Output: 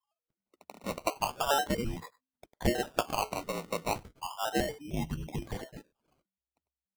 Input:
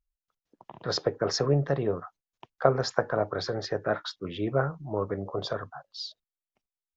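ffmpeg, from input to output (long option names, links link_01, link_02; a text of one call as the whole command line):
ffmpeg -i in.wav -filter_complex "[0:a]lowpass=frequency=2700:width_type=q:width=0.5098,lowpass=frequency=2700:width_type=q:width=0.6013,lowpass=frequency=2700:width_type=q:width=0.9,lowpass=frequency=2700:width_type=q:width=2.563,afreqshift=-3200,acrossover=split=1000[link_01][link_02];[link_01]adelay=100[link_03];[link_03][link_02]amix=inputs=2:normalize=0,acrusher=samples=21:mix=1:aa=0.000001:lfo=1:lforange=12.6:lforate=0.34,volume=-4dB" out.wav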